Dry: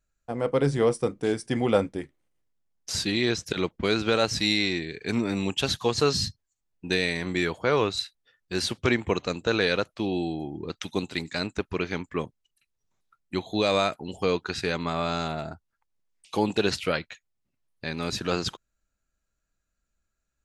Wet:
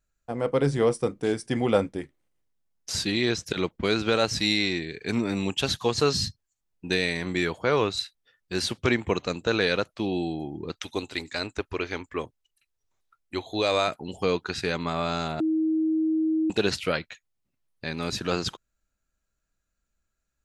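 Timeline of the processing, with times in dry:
10.72–13.88 bell 180 Hz -11.5 dB 0.69 oct
15.4–16.5 bleep 317 Hz -21 dBFS

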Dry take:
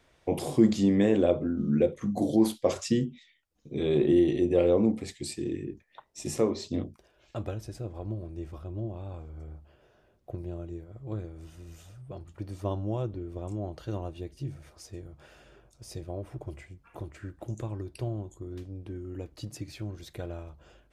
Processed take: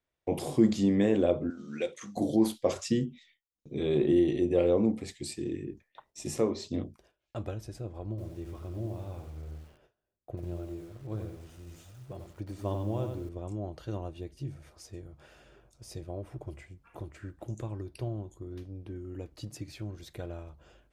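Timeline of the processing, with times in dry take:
1.5–2.17 weighting filter ITU-R 468
8.09–13.29 lo-fi delay 91 ms, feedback 35%, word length 9-bit, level -6 dB
17.87–18.96 bell 7600 Hz -8.5 dB 0.21 oct
whole clip: gate with hold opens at -51 dBFS; gain -2 dB

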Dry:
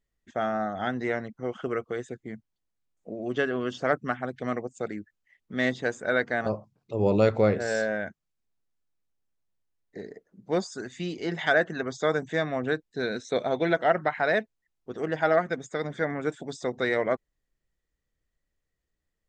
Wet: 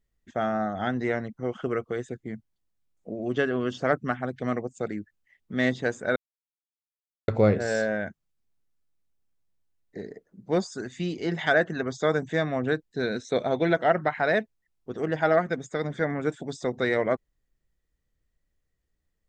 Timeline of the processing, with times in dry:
6.16–7.28 mute
whole clip: low shelf 260 Hz +5.5 dB

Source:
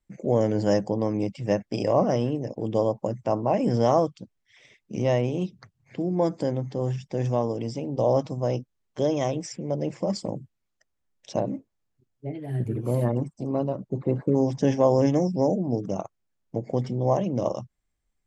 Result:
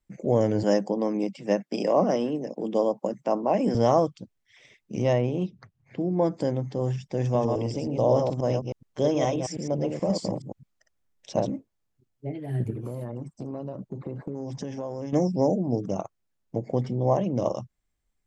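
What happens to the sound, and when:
0.63–3.75 steep high-pass 160 Hz 48 dB/oct
5.13–6.37 LPF 2900 Hz 6 dB/oct
7.24–11.5 reverse delay 0.106 s, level -4.5 dB
12.7–15.13 compressor, threshold -30 dBFS
16.68–17.37 high shelf 4100 Hz -5 dB

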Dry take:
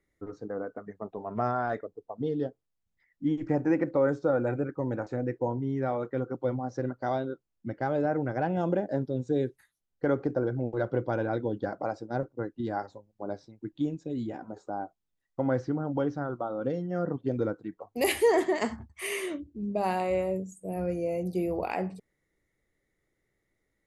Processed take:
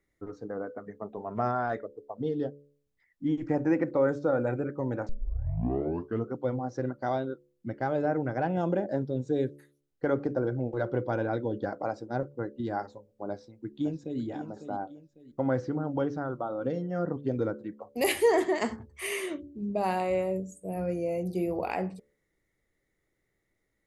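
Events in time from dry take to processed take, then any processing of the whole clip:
5.09 tape start 1.24 s
13.3–14.21 echo throw 0.55 s, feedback 30%, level -9 dB
whole clip: de-hum 71.71 Hz, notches 8

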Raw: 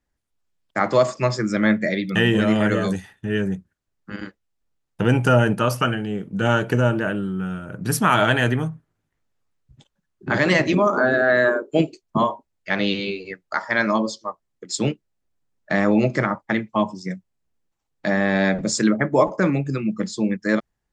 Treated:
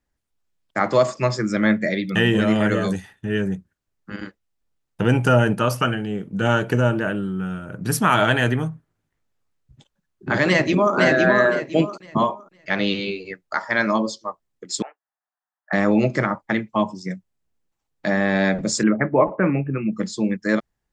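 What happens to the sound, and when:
10.47–10.95 echo throw 0.51 s, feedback 25%, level -2 dB
14.82–15.73 elliptic band-pass 720–1800 Hz, stop band 70 dB
18.83–19.93 steep low-pass 2900 Hz 96 dB/oct

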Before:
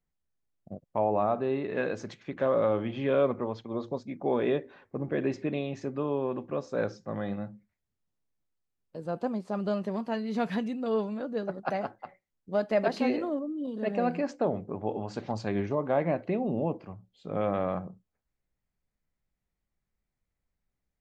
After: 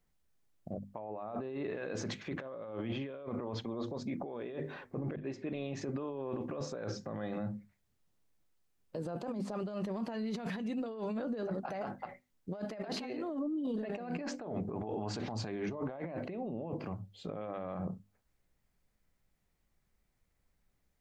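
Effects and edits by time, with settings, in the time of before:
5.16–6.08 fade in
12.65–15.91 notch 540 Hz, Q 9.2
whole clip: notches 50/100/150/200/250 Hz; negative-ratio compressor -38 dBFS, ratio -1; limiter -30 dBFS; gain +1 dB

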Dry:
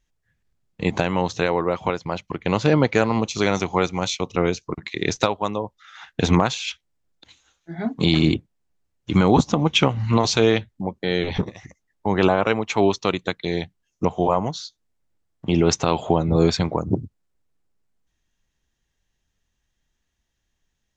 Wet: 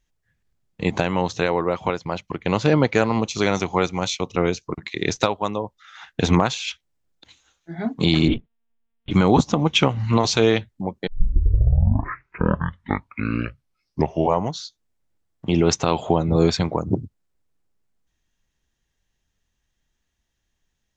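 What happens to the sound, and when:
8.28–9.11 monotone LPC vocoder at 8 kHz 230 Hz
11.07 tape start 3.44 s

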